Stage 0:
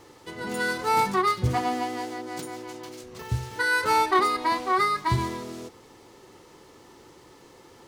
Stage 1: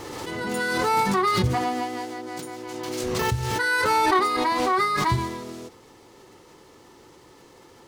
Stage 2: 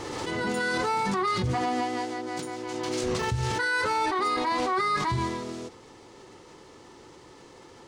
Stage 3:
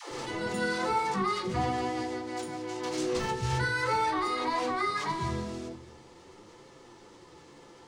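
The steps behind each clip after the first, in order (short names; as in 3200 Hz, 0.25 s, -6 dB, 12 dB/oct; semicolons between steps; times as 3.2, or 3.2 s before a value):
backwards sustainer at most 21 dB/s
limiter -20 dBFS, peak gain reduction 11.5 dB; polynomial smoothing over 9 samples; gain +1 dB
flange 0.45 Hz, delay 7 ms, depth 9.1 ms, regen +49%; dispersion lows, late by 0.118 s, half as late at 350 Hz; reverb RT60 1.0 s, pre-delay 6 ms, DRR 6 dB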